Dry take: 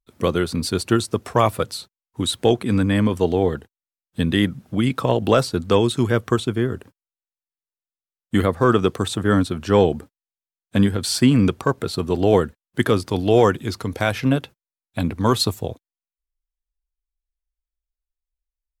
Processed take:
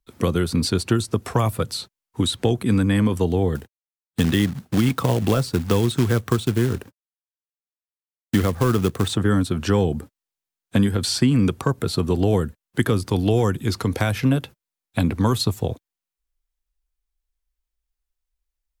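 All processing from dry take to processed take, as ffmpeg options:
ffmpeg -i in.wav -filter_complex "[0:a]asettb=1/sr,asplit=3[link_01][link_02][link_03];[link_01]atrim=end=3.554[link_04];[link_02]atrim=start=3.55:end=9.13,asetpts=PTS-STARTPTS,afade=type=in:duration=0.004:curve=qsin,afade=type=out:start_time=5.576:duration=0.004:curve=qsin,acrusher=bits=3:mode=log:mix=0:aa=0.000001,agate=range=-33dB:threshold=-45dB:ratio=3:release=100:detection=peak[link_05];[link_03]atrim=start=9.126[link_06];[link_04][link_05]acrossfade=duration=0.004:curve1=hsin:curve2=qsin[link_07];[link_07][link_06]acrossfade=duration=0.004:curve1=qsin:curve2=hsin,bandreject=frequency=610:width=14,acrossover=split=210|7600[link_08][link_09][link_10];[link_08]acompressor=threshold=-24dB:ratio=4[link_11];[link_09]acompressor=threshold=-28dB:ratio=4[link_12];[link_10]acompressor=threshold=-43dB:ratio=4[link_13];[link_11][link_12][link_13]amix=inputs=3:normalize=0,volume=5.5dB" out.wav

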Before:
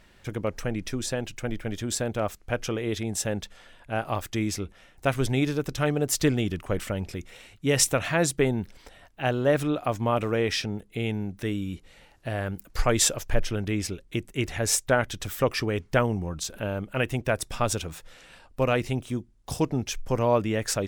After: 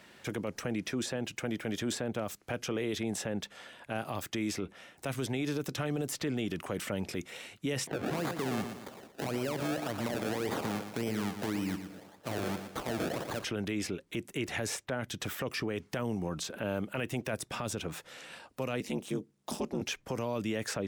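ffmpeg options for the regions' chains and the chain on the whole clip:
ffmpeg -i in.wav -filter_complex "[0:a]asettb=1/sr,asplit=3[link_01][link_02][link_03];[link_01]atrim=end=7.874[link_04];[link_02]atrim=start=7.87:end=13.44,asetpts=PTS-STARTPTS,afade=type=in:duration=0.004:curve=qsin,afade=type=out:start_time=5.566:duration=0.004:curve=qsin,acrusher=samples=31:mix=1:aa=0.000001:lfo=1:lforange=31:lforate=1.8,acompressor=threshold=-28dB:ratio=3:attack=3.2:release=140:knee=1:detection=peak,aecho=1:1:116|232|348|464:0.316|0.126|0.0506|0.0202,atrim=end_sample=245637[link_05];[link_03]atrim=start=13.436[link_06];[link_04][link_05]acrossfade=duration=0.004:curve1=hsin:curve2=qsin[link_07];[link_07][link_06]acrossfade=duration=0.004:curve1=qsin:curve2=hsin,asettb=1/sr,asplit=3[link_08][link_09][link_10];[link_08]atrim=end=18.804[link_11];[link_09]atrim=start=18.8:end=19.81,asetpts=PTS-STARTPTS,afade=type=in:duration=0.004:curve=qsin,afade=type=out:start_time=1.006:duration=0.004:curve=qsin,highpass=65,aeval=exprs='val(0)*sin(2*PI*100*n/s)':channel_layout=same[link_12];[link_10]atrim=start=19.806[link_13];[link_11][link_12]acrossfade=duration=0.004:curve1=hsin:curve2=qsin[link_14];[link_14][link_13]acrossfade=duration=0.004:curve1=qsin:curve2=hsin,highpass=170,acrossover=split=260|3200[link_15][link_16][link_17];[link_15]acompressor=threshold=-36dB:ratio=4[link_18];[link_16]acompressor=threshold=-34dB:ratio=4[link_19];[link_17]acompressor=threshold=-45dB:ratio=4[link_20];[link_18][link_19][link_20]amix=inputs=3:normalize=0,alimiter=level_in=3.5dB:limit=-24dB:level=0:latency=1:release=17,volume=-3.5dB,volume=3dB" out.wav

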